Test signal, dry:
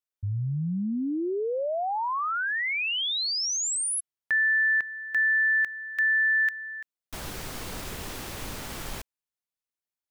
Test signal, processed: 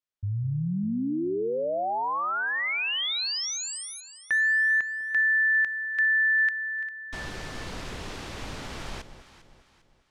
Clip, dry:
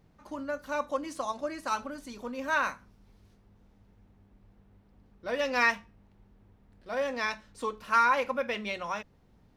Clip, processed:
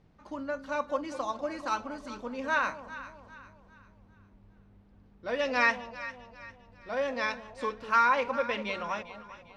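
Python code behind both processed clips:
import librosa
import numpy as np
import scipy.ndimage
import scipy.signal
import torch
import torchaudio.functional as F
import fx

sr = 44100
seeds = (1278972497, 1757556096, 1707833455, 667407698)

y = scipy.signal.sosfilt(scipy.signal.butter(2, 5700.0, 'lowpass', fs=sr, output='sos'), x)
y = fx.echo_alternate(y, sr, ms=200, hz=830.0, feedback_pct=62, wet_db=-10)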